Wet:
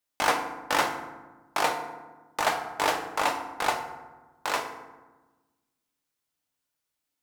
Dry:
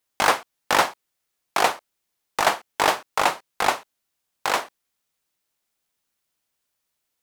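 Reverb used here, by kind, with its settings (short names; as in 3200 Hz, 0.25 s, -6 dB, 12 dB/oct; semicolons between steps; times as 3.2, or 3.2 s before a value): FDN reverb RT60 1.2 s, low-frequency decay 1.45×, high-frequency decay 0.5×, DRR 4 dB; gain -6.5 dB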